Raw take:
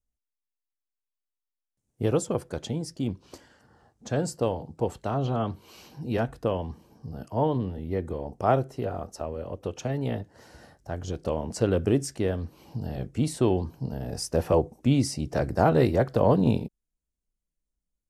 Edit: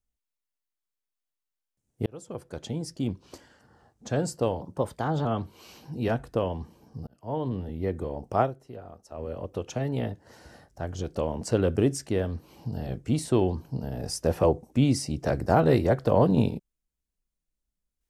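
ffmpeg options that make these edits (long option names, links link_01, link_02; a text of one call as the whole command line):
ffmpeg -i in.wav -filter_complex "[0:a]asplit=7[link_01][link_02][link_03][link_04][link_05][link_06][link_07];[link_01]atrim=end=2.06,asetpts=PTS-STARTPTS,afade=type=out:start_time=2.056:duration=0.004:curve=hsin[link_08];[link_02]atrim=start=2.06:end=4.614,asetpts=PTS-STARTPTS,afade=type=in:duration=0.83[link_09];[link_03]atrim=start=4.61:end=5.34,asetpts=PTS-STARTPTS,asetrate=50274,aresample=44100,atrim=end_sample=28239,asetpts=PTS-STARTPTS[link_10];[link_04]atrim=start=5.336:end=7.16,asetpts=PTS-STARTPTS,afade=type=out:start_time=1.82:duration=0.004:curve=hsin[link_11];[link_05]atrim=start=7.16:end=8.63,asetpts=PTS-STARTPTS,afade=type=in:duration=0.57,afade=type=out:start_time=1.33:duration=0.14:curve=qua:silence=0.266073[link_12];[link_06]atrim=start=8.63:end=9.17,asetpts=PTS-STARTPTS,volume=-11.5dB[link_13];[link_07]atrim=start=9.17,asetpts=PTS-STARTPTS,afade=type=in:duration=0.14:curve=qua:silence=0.266073[link_14];[link_08][link_09]concat=n=2:v=0:a=1[link_15];[link_15][link_10]acrossfade=duration=0.004:curve1=hsin:curve2=hsin[link_16];[link_11][link_12][link_13][link_14]concat=n=4:v=0:a=1[link_17];[link_16][link_17]acrossfade=duration=0.004:curve1=hsin:curve2=hsin" out.wav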